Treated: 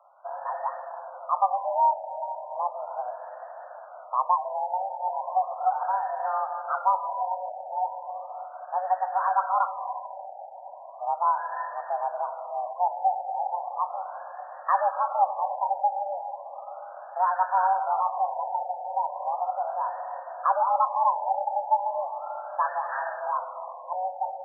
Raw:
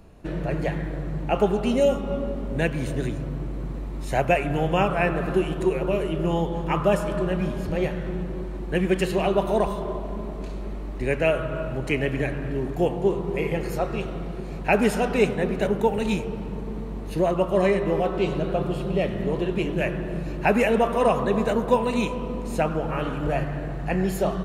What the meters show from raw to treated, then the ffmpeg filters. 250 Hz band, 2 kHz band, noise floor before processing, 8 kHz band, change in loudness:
under -40 dB, -10.5 dB, -32 dBFS, under -35 dB, -3.0 dB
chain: -af "highpass=f=260:t=q:w=0.5412,highpass=f=260:t=q:w=1.307,lowpass=f=3200:t=q:w=0.5176,lowpass=f=3200:t=q:w=0.7071,lowpass=f=3200:t=q:w=1.932,afreqshift=370,afftfilt=real='re*lt(b*sr/1024,930*pow(1900/930,0.5+0.5*sin(2*PI*0.36*pts/sr)))':imag='im*lt(b*sr/1024,930*pow(1900/930,0.5+0.5*sin(2*PI*0.36*pts/sr)))':win_size=1024:overlap=0.75,volume=0.841"

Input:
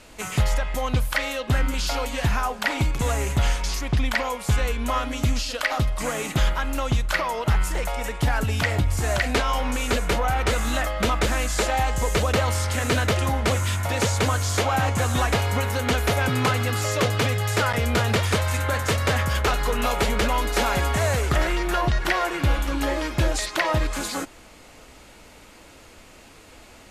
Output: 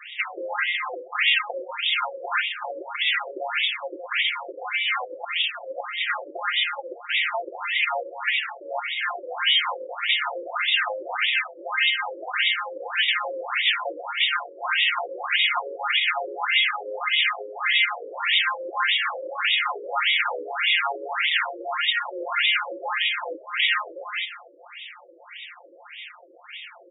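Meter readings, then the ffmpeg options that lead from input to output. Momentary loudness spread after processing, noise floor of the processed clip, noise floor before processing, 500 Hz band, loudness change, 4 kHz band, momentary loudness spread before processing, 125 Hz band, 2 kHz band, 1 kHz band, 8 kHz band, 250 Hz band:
11 LU, -48 dBFS, -48 dBFS, -7.0 dB, 0.0 dB, +7.5 dB, 3 LU, under -40 dB, +4.5 dB, -2.5 dB, under -40 dB, -20.0 dB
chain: -filter_complex "[0:a]lowpass=9300,afftfilt=real='re*lt(hypot(re,im),0.251)':imag='im*lt(hypot(re,im),0.251)':win_size=1024:overlap=0.75,equalizer=f=4200:t=o:w=1.2:g=11.5,aecho=1:1:5.7:0.99,bandreject=f=73.07:t=h:w=4,bandreject=f=146.14:t=h:w=4,bandreject=f=219.21:t=h:w=4,bandreject=f=292.28:t=h:w=4,bandreject=f=365.35:t=h:w=4,bandreject=f=438.42:t=h:w=4,bandreject=f=511.49:t=h:w=4,bandreject=f=584.56:t=h:w=4,bandreject=f=657.63:t=h:w=4,asubboost=boost=8.5:cutoff=98,acrossover=split=1400[s0][s1];[s1]acontrast=21[s2];[s0][s2]amix=inputs=2:normalize=0,aeval=exprs='val(0)+0.00562*(sin(2*PI*50*n/s)+sin(2*PI*2*50*n/s)/2+sin(2*PI*3*50*n/s)/3+sin(2*PI*4*50*n/s)/4+sin(2*PI*5*50*n/s)/5)':c=same,asplit=2[s3][s4];[s4]aecho=0:1:127|254|381:0.188|0.0659|0.0231[s5];[s3][s5]amix=inputs=2:normalize=0,alimiter=level_in=2.99:limit=0.891:release=50:level=0:latency=1,afftfilt=real='re*between(b*sr/1024,420*pow(2700/420,0.5+0.5*sin(2*PI*1.7*pts/sr))/1.41,420*pow(2700/420,0.5+0.5*sin(2*PI*1.7*pts/sr))*1.41)':imag='im*between(b*sr/1024,420*pow(2700/420,0.5+0.5*sin(2*PI*1.7*pts/sr))/1.41,420*pow(2700/420,0.5+0.5*sin(2*PI*1.7*pts/sr))*1.41)':win_size=1024:overlap=0.75,volume=0.531"

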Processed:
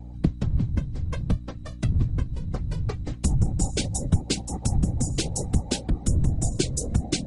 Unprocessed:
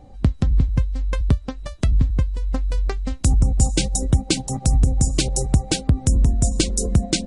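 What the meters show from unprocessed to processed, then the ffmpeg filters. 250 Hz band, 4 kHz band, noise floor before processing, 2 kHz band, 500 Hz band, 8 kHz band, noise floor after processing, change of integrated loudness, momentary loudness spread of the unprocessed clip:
-4.0 dB, -6.0 dB, -39 dBFS, -6.5 dB, -4.5 dB, -6.0 dB, -38 dBFS, -6.0 dB, 6 LU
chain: -af "afftfilt=real='hypot(re,im)*cos(2*PI*random(0))':imag='hypot(re,im)*sin(2*PI*random(1))':win_size=512:overlap=0.75,aeval=exprs='val(0)+0.0126*(sin(2*PI*60*n/s)+sin(2*PI*2*60*n/s)/2+sin(2*PI*3*60*n/s)/3+sin(2*PI*4*60*n/s)/4+sin(2*PI*5*60*n/s)/5)':c=same"

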